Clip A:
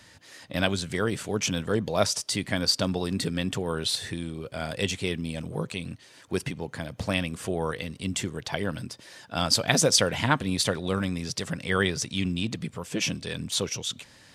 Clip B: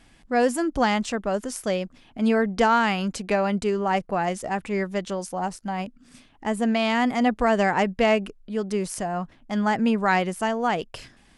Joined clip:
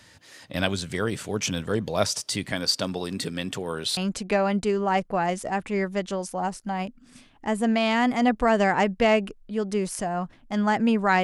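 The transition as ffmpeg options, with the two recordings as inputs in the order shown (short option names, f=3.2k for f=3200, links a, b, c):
-filter_complex "[0:a]asettb=1/sr,asplit=3[a][b][c];[a]atrim=end=2.524[d];[b]atrim=start=2.52:end=3.97,asetpts=PTS-STARTPTS,afade=t=in:d=0.004:c=qsin,afade=t=out:st=1.446:d=0.004:c=qsin,highpass=f=200:p=1[e];[c]atrim=start=3.966[f];[d][e]acrossfade=d=0.004:c1=hsin:c2=qsin[g];[g][f]acrossfade=d=0.004:c1=qsin:c2=hsin,apad=whole_dur=11.23,atrim=end=11.23,atrim=end=3.972[h];[1:a]atrim=start=2.958:end=10.22[i];[h][i]acrossfade=d=0.004:c1=hsin:c2=hsin"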